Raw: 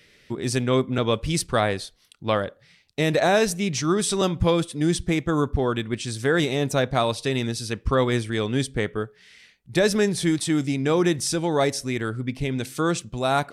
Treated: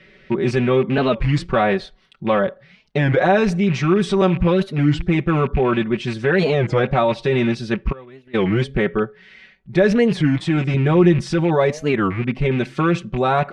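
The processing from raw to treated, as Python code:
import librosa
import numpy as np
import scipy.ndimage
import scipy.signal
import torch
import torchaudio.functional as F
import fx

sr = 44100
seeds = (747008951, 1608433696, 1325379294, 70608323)

p1 = fx.rattle_buzz(x, sr, strikes_db=-29.0, level_db=-26.0)
p2 = scipy.signal.sosfilt(scipy.signal.butter(2, 2200.0, 'lowpass', fs=sr, output='sos'), p1)
p3 = p2 + 0.85 * np.pad(p2, (int(5.3 * sr / 1000.0), 0))[:len(p2)]
p4 = fx.gate_flip(p3, sr, shuts_db=-24.0, range_db=-28, at=(7.91, 8.36), fade=0.02)
p5 = fx.low_shelf(p4, sr, hz=180.0, db=10.0, at=(10.74, 11.23))
p6 = fx.over_compress(p5, sr, threshold_db=-24.0, ratio=-1.0)
p7 = p5 + (p6 * librosa.db_to_amplitude(-2.0))
y = fx.record_warp(p7, sr, rpm=33.33, depth_cents=250.0)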